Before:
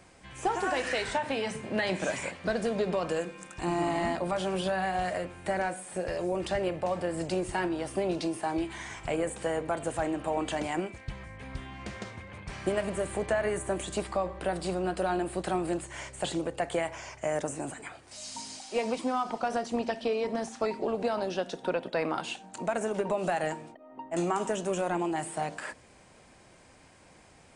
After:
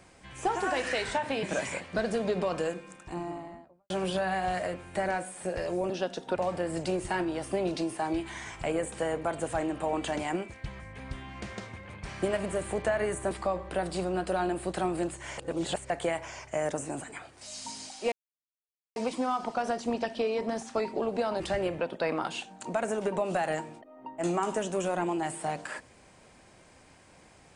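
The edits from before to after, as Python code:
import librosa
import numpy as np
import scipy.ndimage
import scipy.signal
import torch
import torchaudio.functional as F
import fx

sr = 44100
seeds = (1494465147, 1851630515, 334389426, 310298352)

y = fx.studio_fade_out(x, sr, start_s=3.02, length_s=1.39)
y = fx.edit(y, sr, fx.cut(start_s=1.43, length_s=0.51),
    fx.swap(start_s=6.41, length_s=0.39, other_s=21.26, other_length_s=0.46),
    fx.cut(start_s=13.75, length_s=0.26),
    fx.reverse_span(start_s=16.08, length_s=0.52),
    fx.insert_silence(at_s=18.82, length_s=0.84), tone=tone)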